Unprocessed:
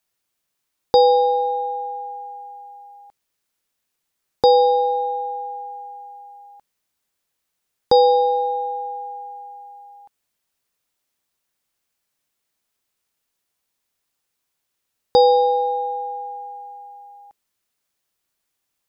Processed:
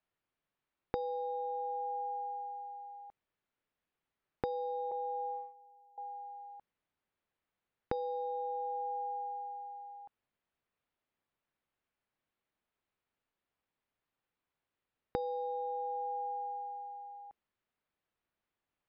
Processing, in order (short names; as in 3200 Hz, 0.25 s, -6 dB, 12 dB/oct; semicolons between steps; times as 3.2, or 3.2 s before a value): 4.91–5.98 gate -27 dBFS, range -22 dB; compressor 16:1, threshold -29 dBFS, peak gain reduction 20 dB; air absorption 410 m; gain -3.5 dB